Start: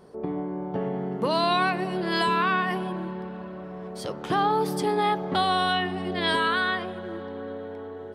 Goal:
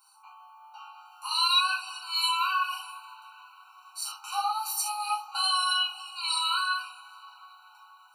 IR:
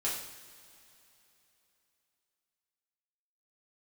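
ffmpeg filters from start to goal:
-filter_complex "[0:a]aderivative[link_01];[1:a]atrim=start_sample=2205,atrim=end_sample=3969[link_02];[link_01][link_02]afir=irnorm=-1:irlink=0,afftfilt=real='re*eq(mod(floor(b*sr/1024/770),2),1)':imag='im*eq(mod(floor(b*sr/1024/770),2),1)':win_size=1024:overlap=0.75,volume=8.5dB"

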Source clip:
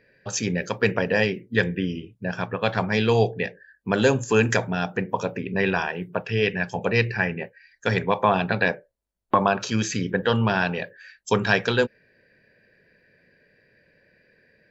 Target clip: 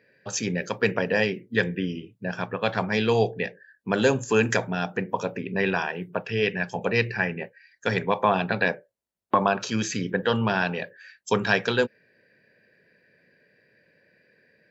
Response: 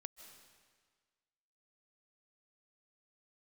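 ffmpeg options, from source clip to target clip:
-af "highpass=120,volume=-1.5dB"

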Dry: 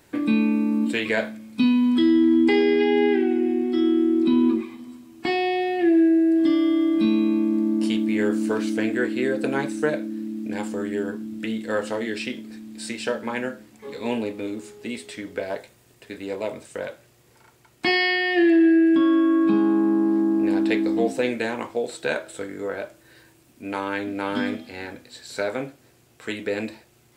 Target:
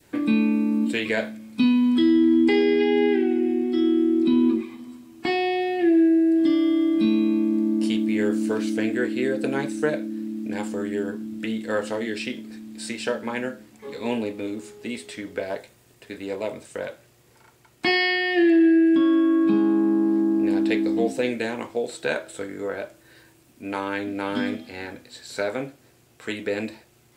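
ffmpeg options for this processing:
ffmpeg -i in.wav -af "adynamicequalizer=threshold=0.0141:dfrequency=1100:dqfactor=1:tfrequency=1100:tqfactor=1:attack=5:release=100:ratio=0.375:range=2:mode=cutabove:tftype=bell" out.wav

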